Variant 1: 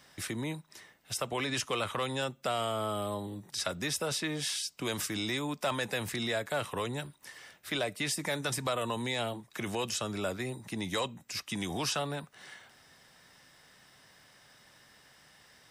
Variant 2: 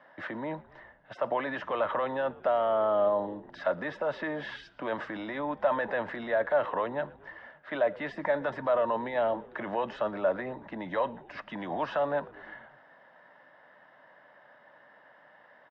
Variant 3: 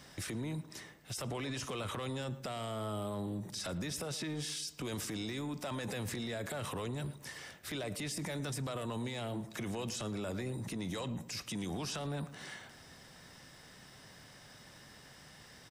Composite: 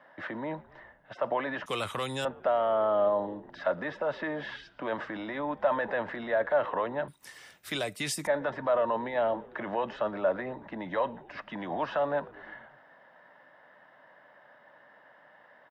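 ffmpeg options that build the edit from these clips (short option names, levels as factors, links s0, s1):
-filter_complex "[0:a]asplit=2[s0][s1];[1:a]asplit=3[s2][s3][s4];[s2]atrim=end=1.662[s5];[s0]atrim=start=1.658:end=2.252[s6];[s3]atrim=start=2.248:end=7.082[s7];[s1]atrim=start=7.078:end=8.272[s8];[s4]atrim=start=8.268[s9];[s5][s6]acrossfade=d=0.004:c1=hsin:c2=hsin[s10];[s10][s7]acrossfade=d=0.004:c1=hsin:c2=hsin[s11];[s11][s8]acrossfade=d=0.004:c1=hsin:c2=hsin[s12];[s12][s9]acrossfade=d=0.004:c1=hsin:c2=hsin"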